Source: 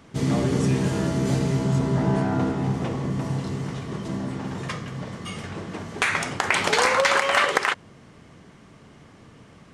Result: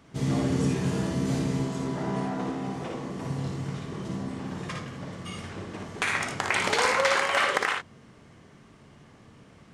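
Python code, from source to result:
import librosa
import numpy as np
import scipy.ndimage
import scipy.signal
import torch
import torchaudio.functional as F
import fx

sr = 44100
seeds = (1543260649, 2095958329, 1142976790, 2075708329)

y = fx.peak_eq(x, sr, hz=98.0, db=-11.5, octaves=1.6, at=(1.61, 3.22))
y = fx.room_early_taps(y, sr, ms=(57, 79), db=(-4.5, -8.5))
y = y * 10.0 ** (-5.5 / 20.0)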